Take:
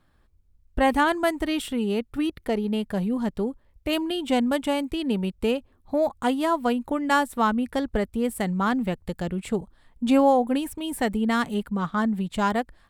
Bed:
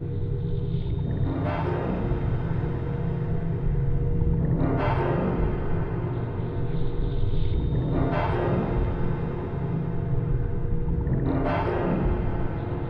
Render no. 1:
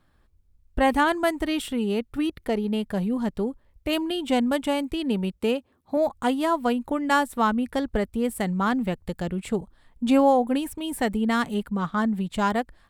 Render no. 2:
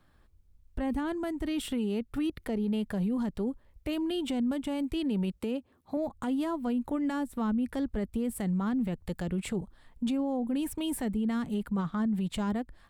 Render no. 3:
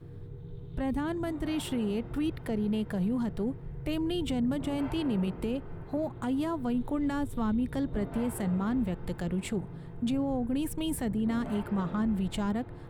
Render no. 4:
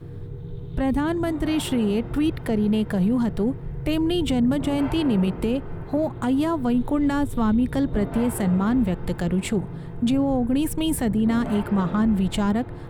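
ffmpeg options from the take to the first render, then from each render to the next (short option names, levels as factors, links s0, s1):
-filter_complex "[0:a]asettb=1/sr,asplit=3[s0][s1][s2];[s0]atrim=end=5.374[s3];[s1]atrim=start=5.37:end=5.97,asetpts=PTS-STARTPTS,afade=t=in:d=0.004:c=qsin,afade=t=out:st=0.596:d=0.004:c=qsin,highpass=120[s4];[s2]atrim=start=5.966[s5];[s3][s4]acrossfade=d=0.004:c1=hsin:c2=qsin[s6];[s6][s5]acrossfade=d=0.004:c1=qsin:c2=hsin"
-filter_complex "[0:a]acrossover=split=340[s0][s1];[s1]acompressor=threshold=0.0224:ratio=10[s2];[s0][s2]amix=inputs=2:normalize=0,alimiter=limit=0.0631:level=0:latency=1:release=20"
-filter_complex "[1:a]volume=0.158[s0];[0:a][s0]amix=inputs=2:normalize=0"
-af "volume=2.66"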